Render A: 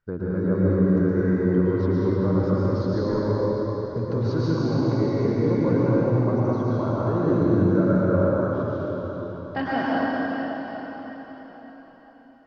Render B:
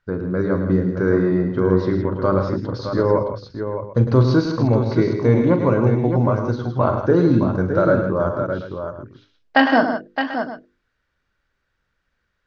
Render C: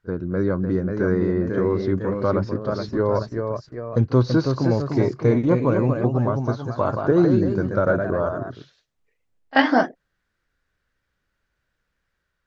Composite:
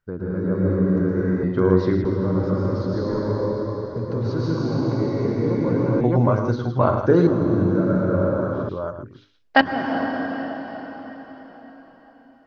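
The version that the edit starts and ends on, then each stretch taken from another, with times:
A
0:01.43–0:02.05: punch in from B
0:06.01–0:07.27: punch in from B
0:08.69–0:09.61: punch in from B
not used: C

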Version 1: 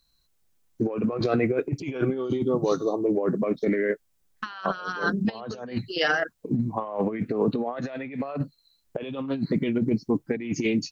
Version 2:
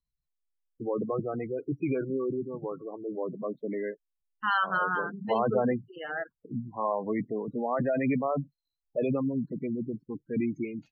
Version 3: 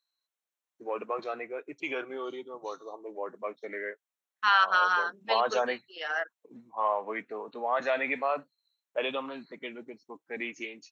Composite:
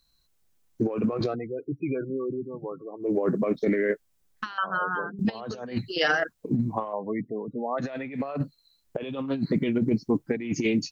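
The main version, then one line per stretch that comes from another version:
1
0:01.28–0:03.07: punch in from 2, crossfade 0.16 s
0:04.58–0:05.19: punch in from 2
0:06.93–0:07.78: punch in from 2
not used: 3

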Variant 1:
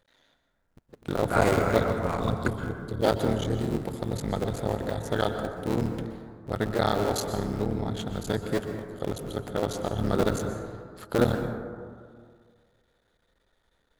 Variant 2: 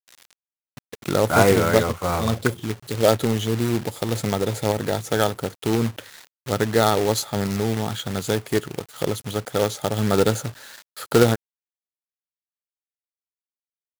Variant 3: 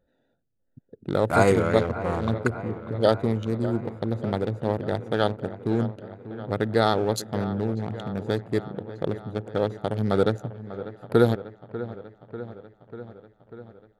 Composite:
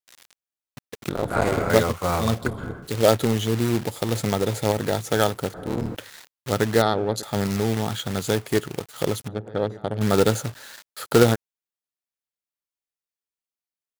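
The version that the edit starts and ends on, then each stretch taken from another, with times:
2
0:01.09–0:01.70: punch in from 1
0:02.43–0:02.84: punch in from 1, crossfade 0.16 s
0:05.54–0:05.95: punch in from 1
0:06.82–0:07.23: punch in from 3
0:09.28–0:10.01: punch in from 3

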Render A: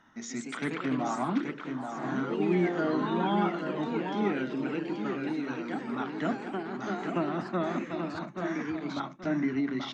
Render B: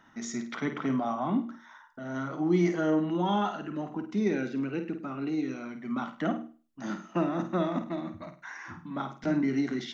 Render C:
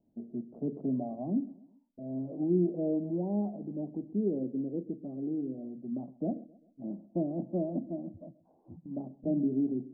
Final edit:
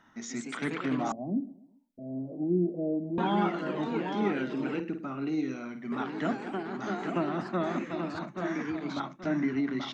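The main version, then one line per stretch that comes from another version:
A
0:01.12–0:03.18: punch in from C
0:04.80–0:05.92: punch in from B

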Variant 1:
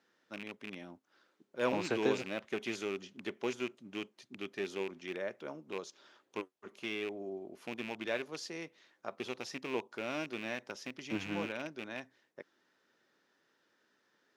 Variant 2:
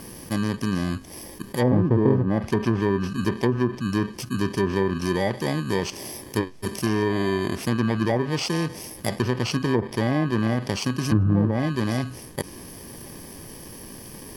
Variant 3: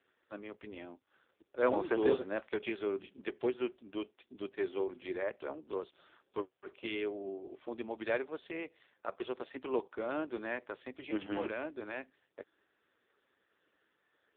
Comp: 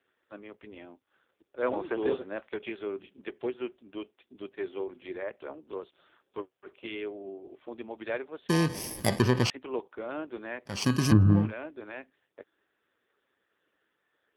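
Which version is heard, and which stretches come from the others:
3
0:08.49–0:09.50: punch in from 2
0:10.77–0:11.42: punch in from 2, crossfade 0.24 s
not used: 1

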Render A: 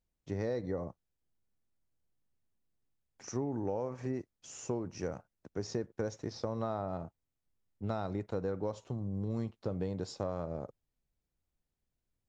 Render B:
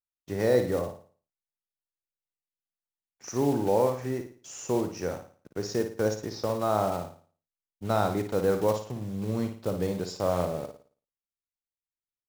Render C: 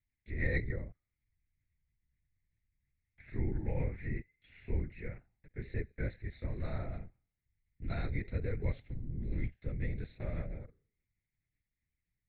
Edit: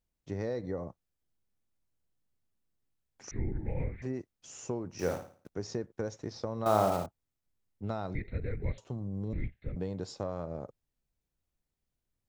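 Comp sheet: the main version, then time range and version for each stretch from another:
A
0:03.31–0:04.02: punch in from C
0:04.99–0:05.49: punch in from B
0:06.66–0:07.06: punch in from B
0:08.15–0:08.78: punch in from C
0:09.33–0:09.76: punch in from C

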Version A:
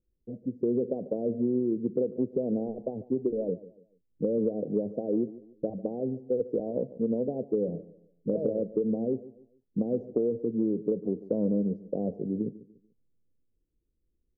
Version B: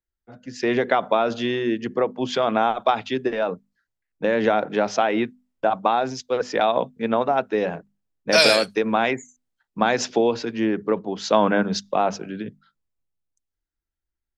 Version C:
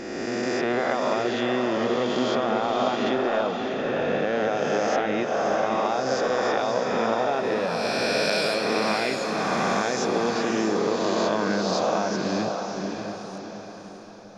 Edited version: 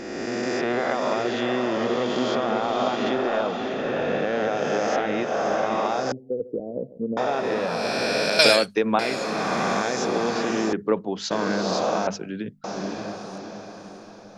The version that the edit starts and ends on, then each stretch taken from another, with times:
C
0:06.12–0:07.17: punch in from A
0:08.39–0:08.99: punch in from B
0:10.73–0:11.31: punch in from B
0:12.07–0:12.64: punch in from B

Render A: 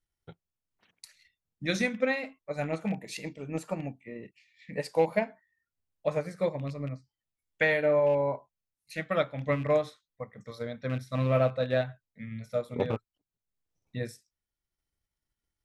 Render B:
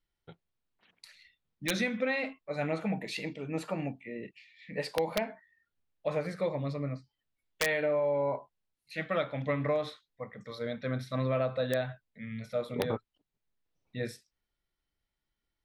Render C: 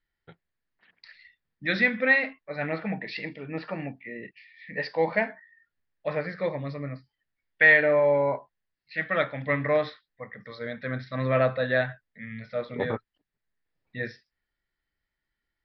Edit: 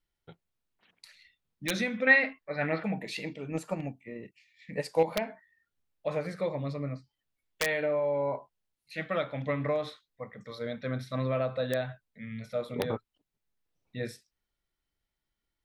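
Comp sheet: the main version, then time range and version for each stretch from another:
B
0:02.07–0:02.84: punch in from C
0:03.51–0:05.03: punch in from A

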